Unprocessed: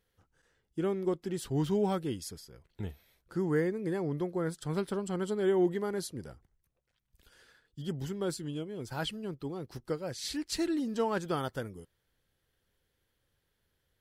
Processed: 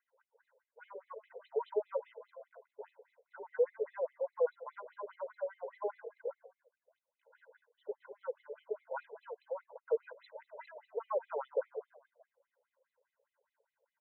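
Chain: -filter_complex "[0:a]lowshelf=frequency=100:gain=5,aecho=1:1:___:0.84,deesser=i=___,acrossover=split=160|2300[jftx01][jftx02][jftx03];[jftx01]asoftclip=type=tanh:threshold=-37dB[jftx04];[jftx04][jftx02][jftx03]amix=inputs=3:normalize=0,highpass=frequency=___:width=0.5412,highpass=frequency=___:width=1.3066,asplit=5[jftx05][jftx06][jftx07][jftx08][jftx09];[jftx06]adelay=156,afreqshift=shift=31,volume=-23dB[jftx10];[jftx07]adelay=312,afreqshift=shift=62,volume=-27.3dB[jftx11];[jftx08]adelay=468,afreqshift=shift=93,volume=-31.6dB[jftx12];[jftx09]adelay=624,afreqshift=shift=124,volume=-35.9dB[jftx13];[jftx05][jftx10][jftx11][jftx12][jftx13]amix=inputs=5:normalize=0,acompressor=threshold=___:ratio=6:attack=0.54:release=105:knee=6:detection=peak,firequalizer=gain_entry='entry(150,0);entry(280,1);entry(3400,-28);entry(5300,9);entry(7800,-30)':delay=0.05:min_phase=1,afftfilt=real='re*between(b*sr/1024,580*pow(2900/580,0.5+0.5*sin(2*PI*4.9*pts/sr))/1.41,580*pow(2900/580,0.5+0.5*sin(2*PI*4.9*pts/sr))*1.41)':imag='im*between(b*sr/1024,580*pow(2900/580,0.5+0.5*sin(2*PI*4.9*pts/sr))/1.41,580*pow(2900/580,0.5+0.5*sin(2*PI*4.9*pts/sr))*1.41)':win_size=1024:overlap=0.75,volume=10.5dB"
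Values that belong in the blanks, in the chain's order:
2, 0.95, 46, 46, -29dB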